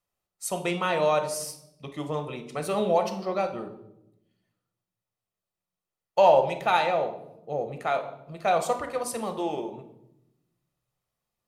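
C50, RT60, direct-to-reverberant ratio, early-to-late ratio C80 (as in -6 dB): 11.0 dB, 0.85 s, 7.0 dB, 14.5 dB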